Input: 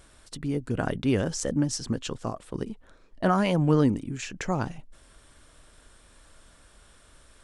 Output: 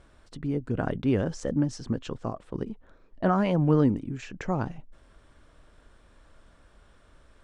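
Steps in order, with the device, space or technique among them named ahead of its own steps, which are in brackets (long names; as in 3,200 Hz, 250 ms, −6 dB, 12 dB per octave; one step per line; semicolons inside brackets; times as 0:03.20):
through cloth (low-pass filter 7,900 Hz 12 dB per octave; high-shelf EQ 2,700 Hz −12 dB)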